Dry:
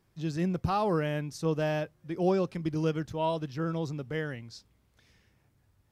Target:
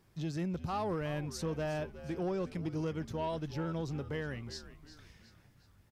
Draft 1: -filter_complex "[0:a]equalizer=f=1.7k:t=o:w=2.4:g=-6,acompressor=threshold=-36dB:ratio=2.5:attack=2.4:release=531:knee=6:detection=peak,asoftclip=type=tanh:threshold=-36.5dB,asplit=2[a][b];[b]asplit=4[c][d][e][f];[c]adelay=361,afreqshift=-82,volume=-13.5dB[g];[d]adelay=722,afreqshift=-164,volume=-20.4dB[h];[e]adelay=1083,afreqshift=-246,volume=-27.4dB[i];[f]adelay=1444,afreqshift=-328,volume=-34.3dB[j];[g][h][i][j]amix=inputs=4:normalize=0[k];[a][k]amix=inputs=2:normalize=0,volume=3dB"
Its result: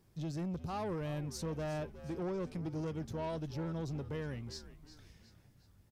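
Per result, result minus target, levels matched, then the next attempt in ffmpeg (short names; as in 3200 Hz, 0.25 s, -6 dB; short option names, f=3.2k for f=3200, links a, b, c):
soft clip: distortion +8 dB; 2000 Hz band -3.0 dB
-filter_complex "[0:a]equalizer=f=1.7k:t=o:w=2.4:g=-6,acompressor=threshold=-36dB:ratio=2.5:attack=2.4:release=531:knee=6:detection=peak,asoftclip=type=tanh:threshold=-30dB,asplit=2[a][b];[b]asplit=4[c][d][e][f];[c]adelay=361,afreqshift=-82,volume=-13.5dB[g];[d]adelay=722,afreqshift=-164,volume=-20.4dB[h];[e]adelay=1083,afreqshift=-246,volume=-27.4dB[i];[f]adelay=1444,afreqshift=-328,volume=-34.3dB[j];[g][h][i][j]amix=inputs=4:normalize=0[k];[a][k]amix=inputs=2:normalize=0,volume=3dB"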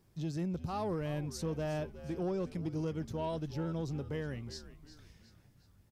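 2000 Hz band -4.0 dB
-filter_complex "[0:a]acompressor=threshold=-36dB:ratio=2.5:attack=2.4:release=531:knee=6:detection=peak,asoftclip=type=tanh:threshold=-30dB,asplit=2[a][b];[b]asplit=4[c][d][e][f];[c]adelay=361,afreqshift=-82,volume=-13.5dB[g];[d]adelay=722,afreqshift=-164,volume=-20.4dB[h];[e]adelay=1083,afreqshift=-246,volume=-27.4dB[i];[f]adelay=1444,afreqshift=-328,volume=-34.3dB[j];[g][h][i][j]amix=inputs=4:normalize=0[k];[a][k]amix=inputs=2:normalize=0,volume=3dB"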